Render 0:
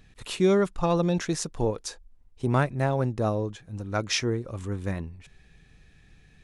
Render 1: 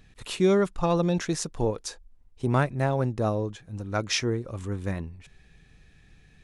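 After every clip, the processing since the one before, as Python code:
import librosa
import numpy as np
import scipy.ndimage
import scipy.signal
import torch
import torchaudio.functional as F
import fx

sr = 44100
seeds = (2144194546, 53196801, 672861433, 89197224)

y = x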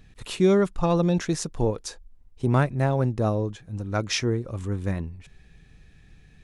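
y = fx.low_shelf(x, sr, hz=340.0, db=4.0)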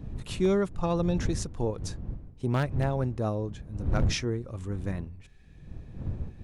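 y = fx.dmg_wind(x, sr, seeds[0], corner_hz=110.0, level_db=-29.0)
y = 10.0 ** (-10.0 / 20.0) * (np.abs((y / 10.0 ** (-10.0 / 20.0) + 3.0) % 4.0 - 2.0) - 1.0)
y = y * 10.0 ** (-5.5 / 20.0)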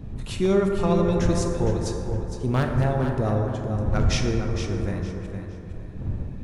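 y = fx.echo_feedback(x, sr, ms=461, feedback_pct=25, wet_db=-9.0)
y = fx.rev_plate(y, sr, seeds[1], rt60_s=3.1, hf_ratio=0.3, predelay_ms=0, drr_db=2.5)
y = y * 10.0 ** (3.0 / 20.0)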